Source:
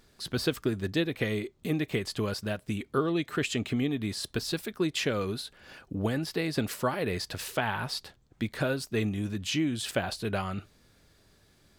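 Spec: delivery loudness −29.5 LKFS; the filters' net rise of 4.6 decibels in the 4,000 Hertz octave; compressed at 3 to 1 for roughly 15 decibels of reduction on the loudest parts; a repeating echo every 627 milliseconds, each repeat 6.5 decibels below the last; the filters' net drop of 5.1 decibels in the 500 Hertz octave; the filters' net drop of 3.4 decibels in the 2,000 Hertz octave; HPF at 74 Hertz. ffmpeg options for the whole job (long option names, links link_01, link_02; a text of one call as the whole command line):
ffmpeg -i in.wav -af "highpass=74,equalizer=frequency=500:width_type=o:gain=-6.5,equalizer=frequency=2000:width_type=o:gain=-6.5,equalizer=frequency=4000:width_type=o:gain=7.5,acompressor=threshold=-47dB:ratio=3,aecho=1:1:627|1254|1881|2508|3135|3762:0.473|0.222|0.105|0.0491|0.0231|0.0109,volume=15dB" out.wav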